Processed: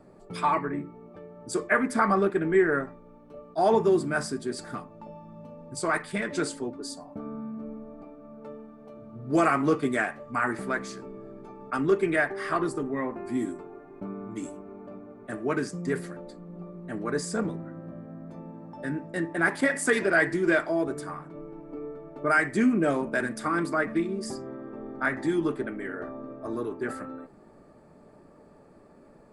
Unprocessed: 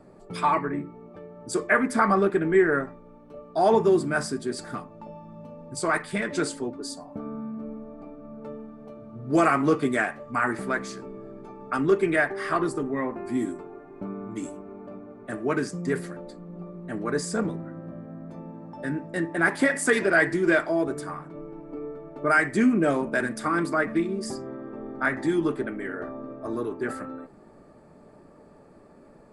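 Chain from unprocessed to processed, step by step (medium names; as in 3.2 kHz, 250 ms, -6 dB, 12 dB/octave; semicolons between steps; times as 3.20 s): 8.03–8.94 s: bass shelf 230 Hz -6 dB; attacks held to a fixed rise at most 580 dB/s; trim -2 dB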